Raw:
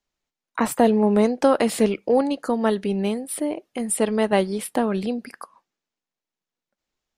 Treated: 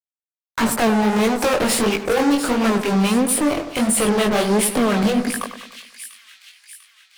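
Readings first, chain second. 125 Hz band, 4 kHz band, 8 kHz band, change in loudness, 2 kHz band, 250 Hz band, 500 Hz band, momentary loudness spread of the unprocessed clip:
no reading, +10.0 dB, +9.0 dB, +3.5 dB, +8.5 dB, +4.0 dB, +1.0 dB, 10 LU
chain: high-pass 87 Hz 6 dB/octave; in parallel at +2.5 dB: compression, threshold -29 dBFS, peak gain reduction 16.5 dB; on the sum: harmonic tremolo 4.4 Hz, depth 70%, crossover 700 Hz; fuzz box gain 31 dB, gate -40 dBFS; chorus 1.5 Hz, delay 17.5 ms, depth 7.4 ms; on a send: two-band feedback delay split 2 kHz, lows 98 ms, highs 695 ms, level -10 dB

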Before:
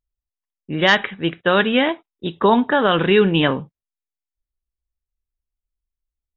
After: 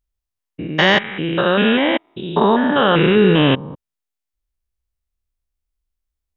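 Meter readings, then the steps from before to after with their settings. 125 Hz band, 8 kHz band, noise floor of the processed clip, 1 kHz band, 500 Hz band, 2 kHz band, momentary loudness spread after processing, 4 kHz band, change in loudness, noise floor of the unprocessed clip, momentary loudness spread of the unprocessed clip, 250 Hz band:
+5.0 dB, no reading, -83 dBFS, +1.5 dB, +2.0 dB, +1.0 dB, 10 LU, +2.5 dB, +2.0 dB, under -85 dBFS, 13 LU, +3.5 dB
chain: spectrogram pixelated in time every 200 ms; trim +6 dB

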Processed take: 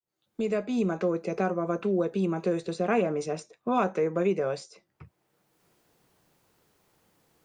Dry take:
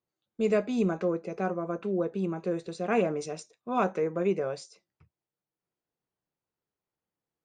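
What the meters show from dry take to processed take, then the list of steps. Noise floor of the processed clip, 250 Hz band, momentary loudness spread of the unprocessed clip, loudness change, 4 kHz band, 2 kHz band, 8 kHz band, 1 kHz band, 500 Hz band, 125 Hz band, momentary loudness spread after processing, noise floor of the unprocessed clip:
-78 dBFS, +2.0 dB, 7 LU, +1.5 dB, +1.5 dB, +1.5 dB, +0.5 dB, +2.0 dB, +1.5 dB, +2.0 dB, 7 LU, under -85 dBFS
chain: fade-in on the opening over 1.34 s; three bands compressed up and down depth 70%; trim +2.5 dB

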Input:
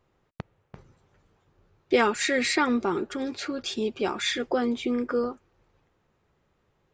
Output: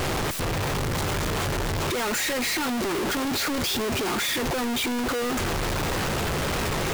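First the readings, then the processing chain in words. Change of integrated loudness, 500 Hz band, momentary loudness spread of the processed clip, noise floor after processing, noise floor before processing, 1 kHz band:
+1.0 dB, +0.5 dB, 2 LU, -26 dBFS, -71 dBFS, +3.5 dB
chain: one-bit comparator; trim +3.5 dB

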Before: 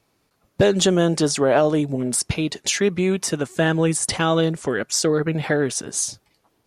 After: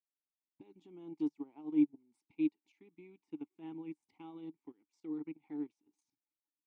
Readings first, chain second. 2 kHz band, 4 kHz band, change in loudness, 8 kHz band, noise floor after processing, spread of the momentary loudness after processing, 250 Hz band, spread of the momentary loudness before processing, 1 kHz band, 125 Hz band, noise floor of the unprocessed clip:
-36.5 dB, under -40 dB, -18.5 dB, under -40 dB, under -85 dBFS, 23 LU, -14.5 dB, 6 LU, -32.5 dB, -34.5 dB, -68 dBFS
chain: level held to a coarse grid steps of 11 dB; vowel filter u; upward expansion 2.5:1, over -41 dBFS

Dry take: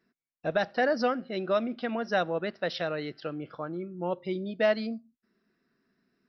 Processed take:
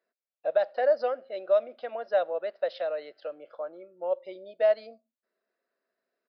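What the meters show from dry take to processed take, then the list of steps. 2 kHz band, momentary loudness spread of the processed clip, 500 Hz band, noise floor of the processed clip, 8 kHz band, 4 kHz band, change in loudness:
-8.0 dB, 14 LU, +3.0 dB, under -85 dBFS, no reading, -9.0 dB, +1.5 dB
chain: resampled via 11.025 kHz; resonant high-pass 570 Hz, resonance Q 5.8; trim -9 dB

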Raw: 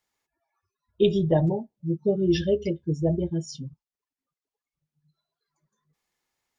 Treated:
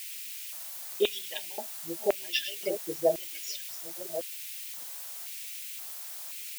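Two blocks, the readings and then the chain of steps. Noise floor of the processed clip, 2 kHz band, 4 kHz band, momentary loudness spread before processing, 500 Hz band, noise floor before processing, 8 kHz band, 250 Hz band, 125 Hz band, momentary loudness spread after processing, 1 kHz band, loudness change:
-41 dBFS, +5.5 dB, +4.5 dB, 10 LU, -5.5 dB, under -85 dBFS, no reading, -16.5 dB, -28.5 dB, 9 LU, -1.5 dB, -8.5 dB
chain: chunks repeated in reverse 604 ms, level -10.5 dB; added noise blue -41 dBFS; LFO high-pass square 0.95 Hz 650–2400 Hz

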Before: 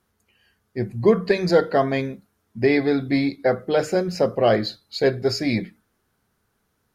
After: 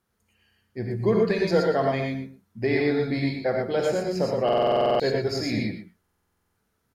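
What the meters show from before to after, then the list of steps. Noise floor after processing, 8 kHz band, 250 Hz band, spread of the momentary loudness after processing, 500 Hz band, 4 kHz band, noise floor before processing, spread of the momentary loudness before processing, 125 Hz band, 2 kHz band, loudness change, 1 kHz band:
-74 dBFS, -3.5 dB, -4.0 dB, 11 LU, -2.5 dB, -3.0 dB, -71 dBFS, 11 LU, -1.5 dB, -3.5 dB, -3.0 dB, -1.0 dB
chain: delay 120 ms -12.5 dB; gated-style reverb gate 140 ms rising, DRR 0 dB; buffer glitch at 4.44/6.01 s, samples 2048, times 11; trim -6.5 dB

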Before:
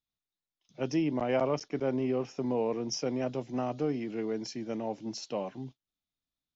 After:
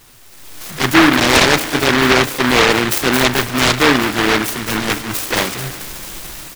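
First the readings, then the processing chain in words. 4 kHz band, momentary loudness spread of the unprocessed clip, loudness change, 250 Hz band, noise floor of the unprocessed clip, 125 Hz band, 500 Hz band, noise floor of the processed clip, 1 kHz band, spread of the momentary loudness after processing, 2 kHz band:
+28.5 dB, 8 LU, +19.0 dB, +15.5 dB, under -85 dBFS, +16.5 dB, +13.0 dB, -40 dBFS, +22.0 dB, 17 LU, +32.5 dB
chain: jump at every zero crossing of -38.5 dBFS; dynamic bell 610 Hz, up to +6 dB, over -45 dBFS, Q 4; comb 2.7 ms, depth 44%; level rider gain up to 14 dB; in parallel at -3.5 dB: hard clipper -14 dBFS, distortion -10 dB; on the sum: touch-sensitive flanger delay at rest 9.2 ms, full sweep at -7.5 dBFS; on a send: feedback echo behind a high-pass 220 ms, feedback 71%, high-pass 3.3 kHz, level -4 dB; on the sum: spring tank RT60 3.2 s, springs 37 ms, chirp 80 ms, DRR 13 dB; delay time shaken by noise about 1.4 kHz, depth 0.4 ms

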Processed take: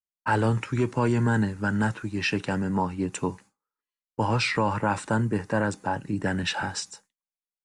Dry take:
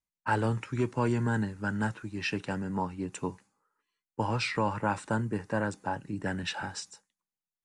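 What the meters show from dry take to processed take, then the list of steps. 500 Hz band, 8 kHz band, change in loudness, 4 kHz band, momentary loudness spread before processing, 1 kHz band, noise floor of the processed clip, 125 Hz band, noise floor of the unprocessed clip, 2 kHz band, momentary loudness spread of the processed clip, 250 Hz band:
+5.0 dB, +6.5 dB, +5.5 dB, +6.0 dB, 8 LU, +4.5 dB, under -85 dBFS, +5.5 dB, under -85 dBFS, +5.5 dB, 7 LU, +5.5 dB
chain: gate with hold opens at -55 dBFS; in parallel at +2 dB: peak limiter -24.5 dBFS, peak gain reduction 9 dB

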